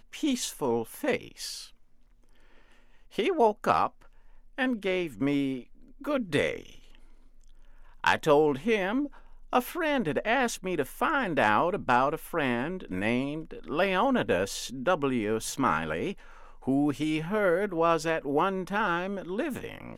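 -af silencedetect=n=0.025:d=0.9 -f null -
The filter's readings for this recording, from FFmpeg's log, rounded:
silence_start: 1.64
silence_end: 3.18 | silence_duration: 1.55
silence_start: 6.61
silence_end: 8.04 | silence_duration: 1.44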